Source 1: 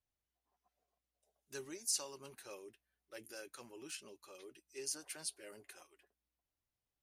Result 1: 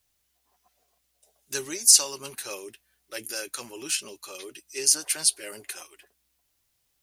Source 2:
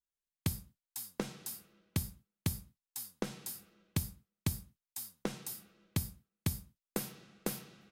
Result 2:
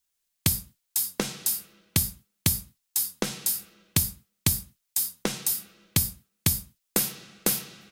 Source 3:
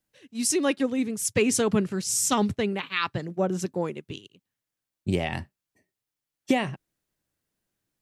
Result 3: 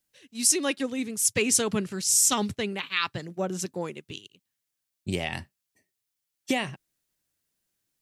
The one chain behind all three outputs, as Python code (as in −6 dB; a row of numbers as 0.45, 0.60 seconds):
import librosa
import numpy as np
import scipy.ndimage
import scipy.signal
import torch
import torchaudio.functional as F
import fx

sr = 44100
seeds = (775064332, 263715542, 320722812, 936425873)

y = fx.high_shelf(x, sr, hz=2100.0, db=10.0)
y = y * 10.0 ** (-30 / 20.0) / np.sqrt(np.mean(np.square(y)))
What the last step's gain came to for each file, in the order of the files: +11.5, +7.0, −4.5 decibels